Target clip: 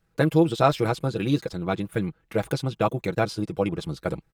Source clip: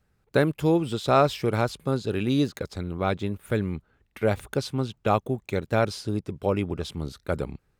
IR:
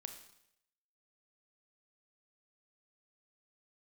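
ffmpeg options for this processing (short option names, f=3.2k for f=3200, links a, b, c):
-af "atempo=1.8,aecho=1:1:6.1:0.61"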